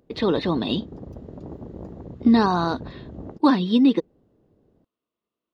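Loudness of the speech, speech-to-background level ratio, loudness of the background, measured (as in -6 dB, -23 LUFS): -21.0 LUFS, 18.5 dB, -39.5 LUFS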